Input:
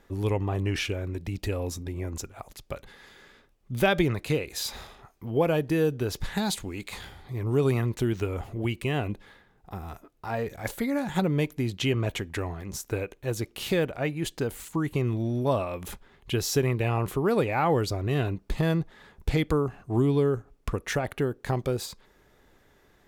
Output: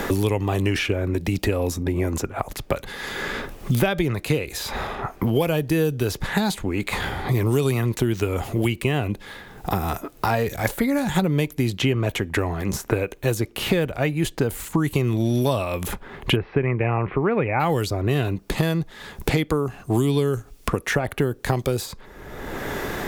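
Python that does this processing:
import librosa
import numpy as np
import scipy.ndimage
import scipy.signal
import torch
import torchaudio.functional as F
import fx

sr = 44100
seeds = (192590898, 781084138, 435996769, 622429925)

y = fx.ellip_lowpass(x, sr, hz=2300.0, order=4, stop_db=70, at=(16.35, 17.59), fade=0.02)
y = fx.high_shelf(y, sr, hz=8900.0, db=6.0)
y = fx.band_squash(y, sr, depth_pct=100)
y = y * librosa.db_to_amplitude(4.5)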